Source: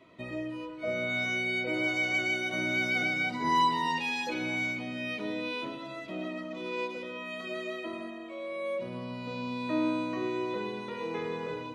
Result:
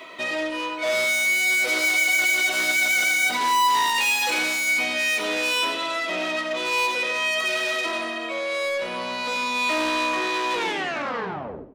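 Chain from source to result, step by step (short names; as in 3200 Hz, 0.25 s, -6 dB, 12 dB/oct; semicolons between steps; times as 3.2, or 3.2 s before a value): tape stop at the end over 1.22 s; reverse; upward compressor, threshold -43 dBFS; reverse; overdrive pedal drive 26 dB, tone 2300 Hz, clips at -16.5 dBFS; RIAA curve recording; on a send: feedback echo 94 ms, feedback 41%, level -17 dB; on the sum: non-linear reverb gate 0.11 s rising, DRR 8.5 dB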